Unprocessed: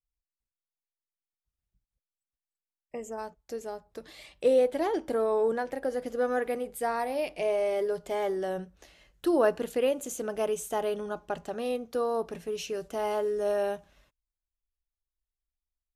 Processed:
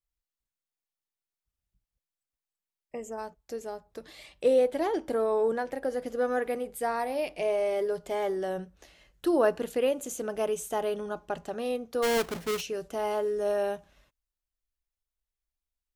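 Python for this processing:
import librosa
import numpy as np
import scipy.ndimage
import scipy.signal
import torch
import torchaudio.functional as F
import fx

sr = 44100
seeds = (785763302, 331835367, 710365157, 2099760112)

y = fx.halfwave_hold(x, sr, at=(12.02, 12.6), fade=0.02)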